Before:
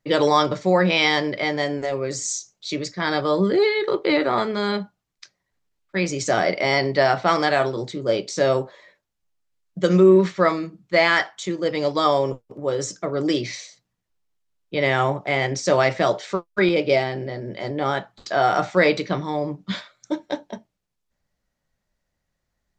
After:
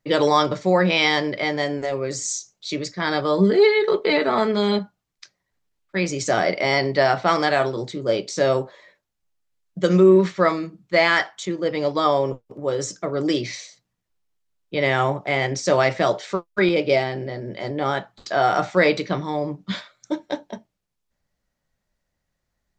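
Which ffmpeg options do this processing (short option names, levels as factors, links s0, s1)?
-filter_complex "[0:a]asettb=1/sr,asplit=3[s0][s1][s2];[s0]atrim=end=3.384[s3];[s1]atrim=start=3.38:end=4.79,asetpts=PTS-STARTPTS,afade=t=in:d=0.004:c=qsin,afade=t=out:st=1.406:d=0.004:c=qsin,aecho=1:1:4.6:0.7,atrim=end_sample=62181[s4];[s2]atrim=start=4.786[s5];[s3][s4]acrossfade=d=0.004:c1=hsin:c2=qsin[s6];[s6][s5]acrossfade=d=0.004:c1=qsin:c2=hsin,asettb=1/sr,asplit=3[s7][s8][s9];[s7]atrim=end=11.454[s10];[s8]atrim=start=11.45:end=12.46,asetpts=PTS-STARTPTS,afade=t=in:d=0.004:c=qsin,afade=t=out:st=1.006:d=0.004:c=qsin,lowpass=f=4000:p=1[s11];[s9]atrim=start=12.456[s12];[s10][s11]acrossfade=d=0.004:c1=hsin:c2=qsin[s13];[s13][s12]acrossfade=d=0.004:c1=qsin:c2=hsin"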